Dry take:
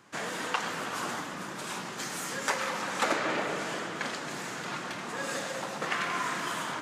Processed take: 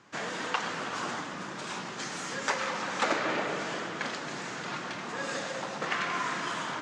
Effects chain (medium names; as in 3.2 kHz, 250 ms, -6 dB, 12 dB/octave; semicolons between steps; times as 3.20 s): low-pass 7.1 kHz 24 dB/octave